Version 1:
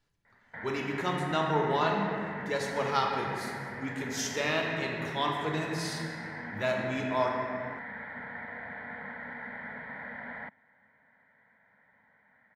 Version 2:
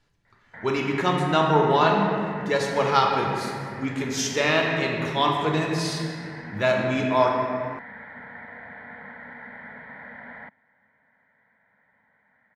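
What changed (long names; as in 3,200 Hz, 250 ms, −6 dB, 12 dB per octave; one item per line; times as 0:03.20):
speech +8.5 dB
master: add high-shelf EQ 11,000 Hz −10.5 dB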